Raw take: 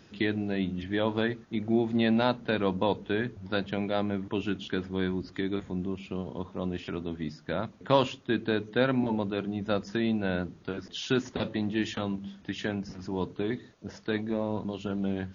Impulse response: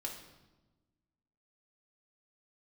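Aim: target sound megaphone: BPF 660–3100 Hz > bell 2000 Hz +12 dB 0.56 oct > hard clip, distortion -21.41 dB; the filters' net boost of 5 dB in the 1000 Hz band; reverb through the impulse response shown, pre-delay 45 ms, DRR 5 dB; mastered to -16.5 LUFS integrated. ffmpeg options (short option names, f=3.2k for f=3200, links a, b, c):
-filter_complex "[0:a]equalizer=f=1k:t=o:g=6,asplit=2[a][b];[1:a]atrim=start_sample=2205,adelay=45[c];[b][c]afir=irnorm=-1:irlink=0,volume=-4dB[d];[a][d]amix=inputs=2:normalize=0,highpass=660,lowpass=3.1k,equalizer=f=2k:t=o:w=0.56:g=12,asoftclip=type=hard:threshold=-15dB,volume=14dB"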